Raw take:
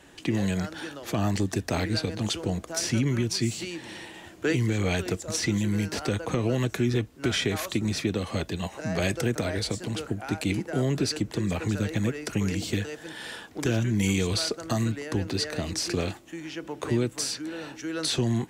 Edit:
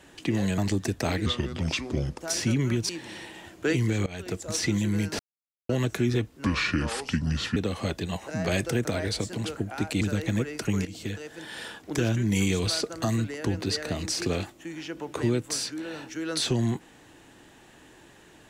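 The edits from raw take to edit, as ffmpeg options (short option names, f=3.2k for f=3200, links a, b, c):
-filter_complex "[0:a]asplit=12[a][b][c][d][e][f][g][h][i][j][k][l];[a]atrim=end=0.582[m];[b]atrim=start=1.258:end=1.944[n];[c]atrim=start=1.94:end=2.65,asetpts=PTS-STARTPTS,asetrate=33957,aresample=44100[o];[d]atrim=start=2.646:end=3.362[p];[e]atrim=start=3.688:end=4.86,asetpts=PTS-STARTPTS,afade=t=out:st=1.168:d=0.004:c=hsin:silence=0.0794328[q];[f]atrim=start=4.86:end=5.99,asetpts=PTS-STARTPTS,afade=t=in:d=0.4:silence=0.0794328,afade=t=out:st=1.126:d=0.004:c=hsin[r];[g]atrim=start=5.99:end=6.49,asetpts=PTS-STARTPTS,volume=0[s];[h]atrim=start=6.49:end=7.244,asetpts=PTS-STARTPTS,afade=t=in:d=0.004:c=hsin[t];[i]atrim=start=7.24:end=8.07,asetpts=PTS-STARTPTS,asetrate=32634,aresample=44100[u];[j]atrim=start=8.066:end=10.522[v];[k]atrim=start=11.688:end=12.53,asetpts=PTS-STARTPTS,afade=t=out:st=0.838:d=0.004:c=hsin:silence=0.211349[w];[l]atrim=start=12.53,asetpts=PTS-STARTPTS,afade=t=in:d=0.87:c=qsin:silence=0.211349[x];[m][n]acrossfade=d=0.004:c1=hsin:c2=hsin[y];[y][o]acrossfade=d=0.004:c1=hsin:c2=hsin[z];[z][p]acrossfade=d=0.004:c1=hsin:c2=hsin[aa];[q][r][s][t]concat=n=4:v=0:a=1[ab];[aa][ab]acrossfade=d=0.004:c1=hsin:c2=hsin[ac];[ac][u]acrossfade=d=0.004:c1=hsin:c2=hsin[ad];[ad][v]acrossfade=d=0.004:c1=hsin:c2=hsin[ae];[w][x]concat=n=2:v=0:a=1[af];[ae][af]acrossfade=d=0.004:c1=hsin:c2=hsin"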